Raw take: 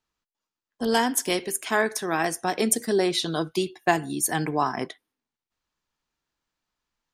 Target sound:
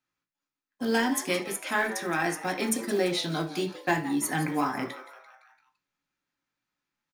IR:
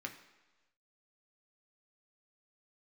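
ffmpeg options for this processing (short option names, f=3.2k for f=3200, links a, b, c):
-filter_complex "[0:a]asoftclip=type=tanh:threshold=-10.5dB,asplit=6[a][b][c][d][e][f];[b]adelay=170,afreqshift=130,volume=-15.5dB[g];[c]adelay=340,afreqshift=260,volume=-21dB[h];[d]adelay=510,afreqshift=390,volume=-26.5dB[i];[e]adelay=680,afreqshift=520,volume=-32dB[j];[f]adelay=850,afreqshift=650,volume=-37.6dB[k];[a][g][h][i][j][k]amix=inputs=6:normalize=0,acrusher=bits=6:mode=log:mix=0:aa=0.000001[l];[1:a]atrim=start_sample=2205,atrim=end_sample=3969[m];[l][m]afir=irnorm=-1:irlink=0"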